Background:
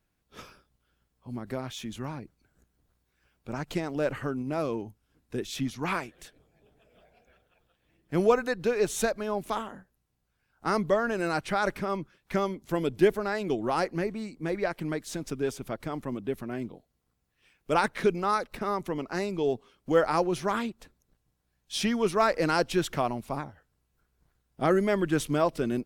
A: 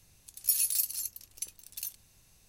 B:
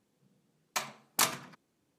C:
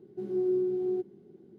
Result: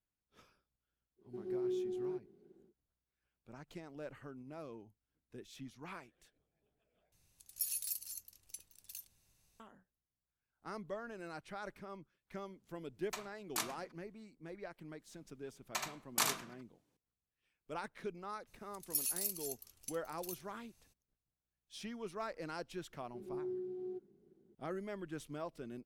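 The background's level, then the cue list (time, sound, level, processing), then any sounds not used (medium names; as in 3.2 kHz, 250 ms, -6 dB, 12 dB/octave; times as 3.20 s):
background -18.5 dB
1.16 s: add C -7 dB, fades 0.10 s + bass shelf 250 Hz -7.5 dB
7.12 s: replace with A -11 dB
12.37 s: add B -11 dB
14.99 s: add B -6 dB + delay 75 ms -4.5 dB
18.46 s: add A -9 dB, fades 0.02 s
22.97 s: add C -13.5 dB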